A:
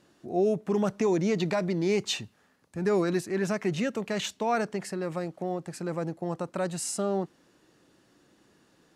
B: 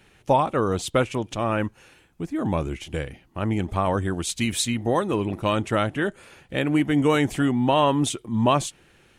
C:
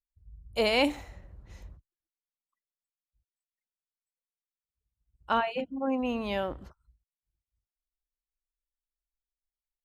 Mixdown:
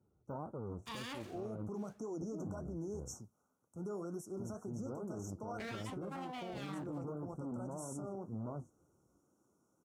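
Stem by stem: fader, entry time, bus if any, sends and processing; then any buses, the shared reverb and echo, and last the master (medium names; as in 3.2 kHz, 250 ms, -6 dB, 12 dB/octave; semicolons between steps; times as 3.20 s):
-8.5 dB, 1.00 s, bus A, no send, treble shelf 9.2 kHz +6 dB
-14.0 dB, 0.00 s, muted 3.22–4.27 s, bus A, no send, de-esser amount 95%; tilt shelf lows +8.5 dB, about 850 Hz; valve stage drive 16 dB, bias 0.75
-5.0 dB, 0.30 s, no bus, no send, high-pass 210 Hz 24 dB/octave; full-wave rectifier
bus A: 0.0 dB, brick-wall FIR band-stop 1.5–5.4 kHz; peak limiter -29 dBFS, peak gain reduction 9 dB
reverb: none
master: high-pass 49 Hz 24 dB/octave; flange 1.9 Hz, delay 7.4 ms, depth 8.1 ms, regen -57%; peak limiter -34.5 dBFS, peak gain reduction 9.5 dB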